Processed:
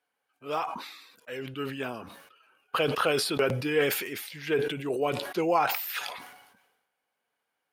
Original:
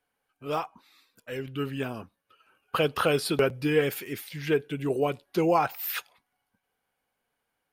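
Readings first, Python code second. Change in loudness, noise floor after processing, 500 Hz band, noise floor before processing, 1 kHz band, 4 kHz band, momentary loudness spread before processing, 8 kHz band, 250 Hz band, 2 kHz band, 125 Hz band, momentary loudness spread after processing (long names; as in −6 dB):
−1.0 dB, −82 dBFS, −1.5 dB, −81 dBFS, 0.0 dB, +2.5 dB, 12 LU, +3.0 dB, −3.5 dB, +1.5 dB, −3.5 dB, 16 LU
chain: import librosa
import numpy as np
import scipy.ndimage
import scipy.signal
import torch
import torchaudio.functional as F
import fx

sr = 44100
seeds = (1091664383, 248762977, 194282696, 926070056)

y = fx.highpass(x, sr, hz=400.0, slope=6)
y = fx.high_shelf(y, sr, hz=8200.0, db=-5.5)
y = fx.sustainer(y, sr, db_per_s=55.0)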